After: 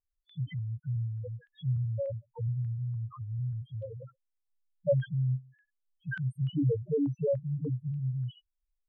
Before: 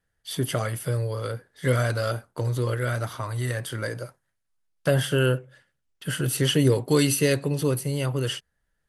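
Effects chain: notch 410 Hz, Q 12; loudest bins only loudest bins 1; stepped low-pass 3.4 Hz 850–3200 Hz

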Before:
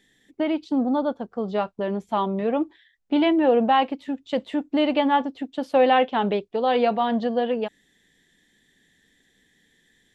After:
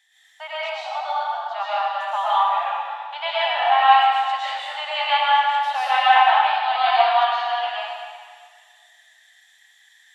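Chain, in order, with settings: steep high-pass 710 Hz 72 dB/oct; reverb RT60 1.8 s, pre-delay 80 ms, DRR -9.5 dB

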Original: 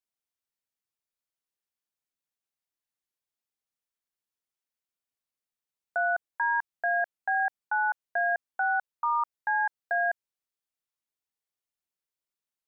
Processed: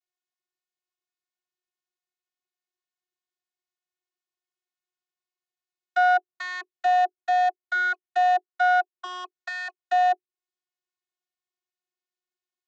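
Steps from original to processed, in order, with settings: notch 870 Hz, Q 22; sample leveller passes 2; vocoder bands 32, saw 363 Hz; mismatched tape noise reduction encoder only; gain +4 dB

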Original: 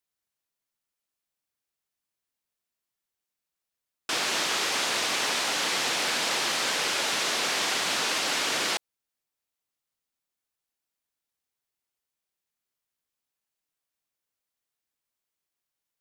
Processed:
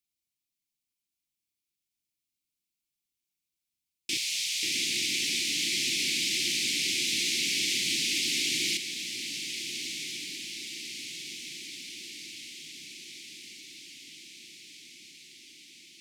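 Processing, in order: Chebyshev band-stop 350–2200 Hz, order 4; 4.17–4.63 passive tone stack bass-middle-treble 10-0-10; diffused feedback echo 1.409 s, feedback 64%, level -8.5 dB

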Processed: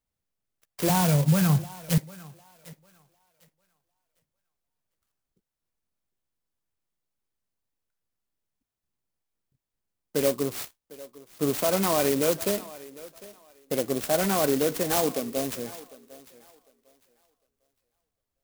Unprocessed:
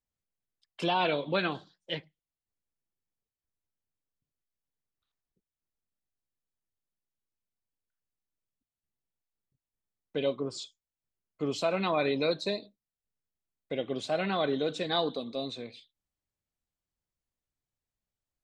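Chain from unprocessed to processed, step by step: 0.89–1.98 resonant low shelf 220 Hz +12 dB, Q 3; limiter -20 dBFS, peak gain reduction 6.5 dB; thinning echo 0.752 s, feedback 24%, high-pass 310 Hz, level -18 dB; clock jitter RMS 0.1 ms; gain +6 dB

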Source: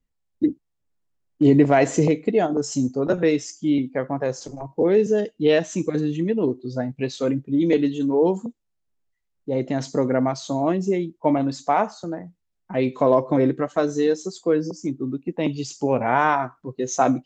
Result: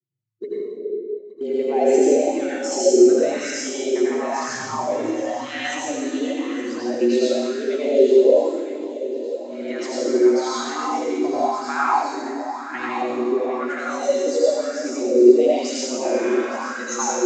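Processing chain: spectral noise reduction 21 dB; 11.11–11.56 resonant low shelf 800 Hz +9.5 dB, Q 1.5; compressor 5:1, threshold -28 dBFS, peak gain reduction 19.5 dB; phaser stages 2, 0.15 Hz, lowest notch 370–1000 Hz; frequency shift +110 Hz; swung echo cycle 1.157 s, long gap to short 3:1, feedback 33%, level -14 dB; reverb RT60 2.1 s, pre-delay 72 ms, DRR -8.5 dB; LFO bell 0.98 Hz 370–1600 Hz +15 dB; gain +1.5 dB

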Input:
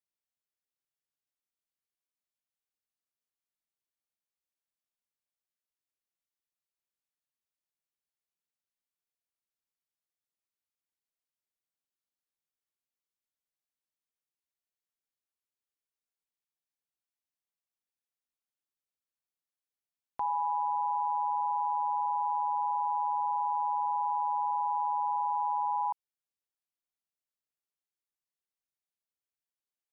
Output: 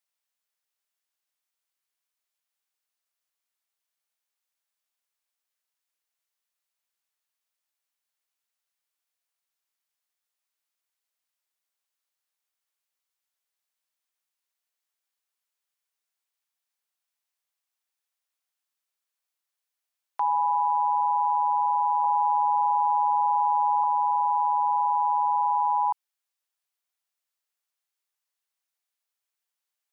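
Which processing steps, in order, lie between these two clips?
HPF 680 Hz; 22.04–23.84 tilt -6 dB/oct; gain +8 dB

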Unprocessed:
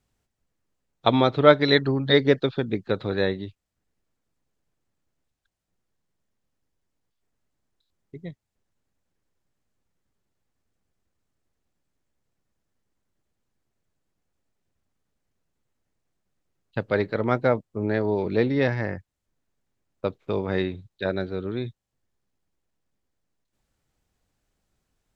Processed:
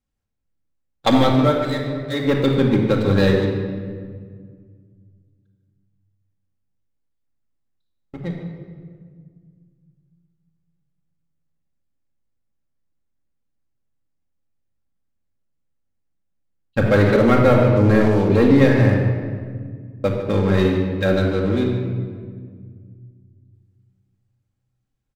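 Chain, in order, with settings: tone controls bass +4 dB, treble -1 dB; 1.13–2.51 dip -17 dB, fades 0.40 s; sample leveller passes 3; speakerphone echo 0.15 s, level -12 dB; shoebox room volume 2800 m³, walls mixed, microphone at 2.2 m; 16.78–18.08 fast leveller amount 50%; gain -6 dB

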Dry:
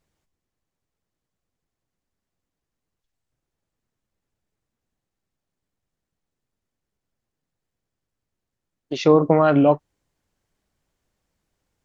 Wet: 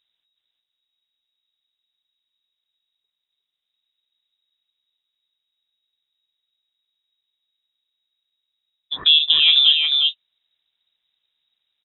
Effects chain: high shelf 2800 Hz -10.5 dB; on a send: echo 0.36 s -3 dB; on the sum: inverted band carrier 3800 Hz

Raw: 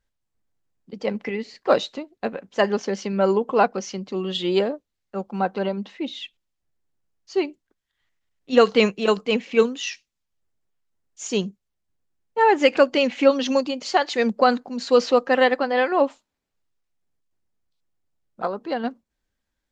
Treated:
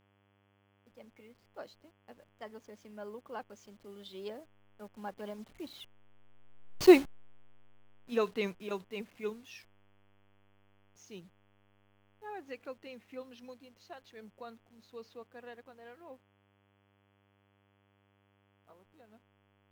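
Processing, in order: level-crossing sampler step -37 dBFS; Doppler pass-by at 6.81, 23 m/s, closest 2.1 m; buzz 100 Hz, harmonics 34, -78 dBFS -4 dB/oct; gain +7.5 dB

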